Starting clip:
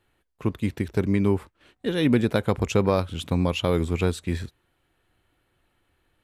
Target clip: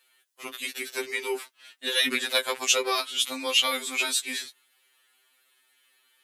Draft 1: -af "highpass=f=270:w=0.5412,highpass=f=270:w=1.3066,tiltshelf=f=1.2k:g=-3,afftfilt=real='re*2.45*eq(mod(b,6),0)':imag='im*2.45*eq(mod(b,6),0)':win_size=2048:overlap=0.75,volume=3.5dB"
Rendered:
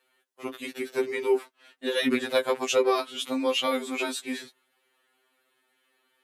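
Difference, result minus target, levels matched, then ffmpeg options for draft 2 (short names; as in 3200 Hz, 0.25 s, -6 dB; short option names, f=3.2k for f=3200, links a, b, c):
1000 Hz band +2.5 dB
-af "highpass=f=270:w=0.5412,highpass=f=270:w=1.3066,tiltshelf=f=1.2k:g=-13.5,afftfilt=real='re*2.45*eq(mod(b,6),0)':imag='im*2.45*eq(mod(b,6),0)':win_size=2048:overlap=0.75,volume=3.5dB"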